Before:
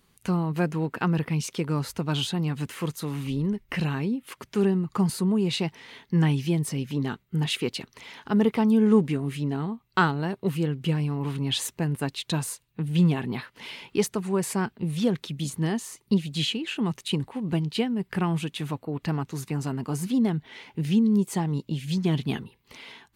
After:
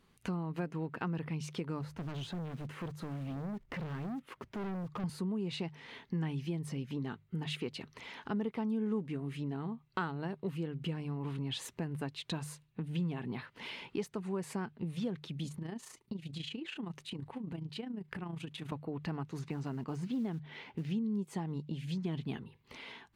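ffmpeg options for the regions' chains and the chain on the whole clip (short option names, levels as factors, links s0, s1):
-filter_complex "[0:a]asettb=1/sr,asplit=3[s0][s1][s2];[s0]atrim=end=1.814[s3];[s1]atrim=start=1.81:end=5.04,asetpts=PTS-STARTPTS,afade=t=in:d=0.004:c=qsin,afade=t=out:st=3.226:d=0.004:c=qsin,highshelf=f=2100:g=-10,acrusher=bits=4:mode=log:mix=0:aa=0.000001,asoftclip=type=hard:threshold=0.0251[s4];[s2]atrim=start=5.036[s5];[s3][s4]acrossfade=d=0.004:c1=hsin:c2=qsin[s6];[s6][s5]acrossfade=d=0.004:c1=qsin:c2=hsin,asettb=1/sr,asplit=3[s7][s8][s9];[s7]atrim=end=15.484[s10];[s8]atrim=start=15.48:end=18.72,asetpts=PTS-STARTPTS,afade=t=in:d=0.004:c=qsin,afade=t=out:st=3.236:d=0.004:c=qsin,acompressor=threshold=0.0251:ratio=3:attack=3.2:release=140:knee=1:detection=peak,tremolo=f=28:d=0.621[s11];[s9]atrim=start=18.716[s12];[s10][s11]acrossfade=d=0.004:c1=hsin:c2=qsin[s13];[s13][s12]acrossfade=d=0.004:c1=qsin:c2=hsin,asettb=1/sr,asplit=3[s14][s15][s16];[s14]atrim=end=19.394[s17];[s15]atrim=start=19.39:end=20.9,asetpts=PTS-STARTPTS,afade=t=in:d=0.004:c=qsin,afade=t=out:st=1.506:d=0.004:c=qsin,lowpass=5900,acrusher=bits=7:mode=log:mix=0:aa=0.000001[s18];[s16]atrim=start=20.896[s19];[s17][s18]acrossfade=d=0.004:c1=hsin:c2=qsin[s20];[s20][s19]acrossfade=d=0.004:c1=qsin:c2=hsin,lowpass=f=3100:p=1,bandreject=f=50:t=h:w=6,bandreject=f=100:t=h:w=6,bandreject=f=150:t=h:w=6,acompressor=threshold=0.0158:ratio=2.5,volume=0.794"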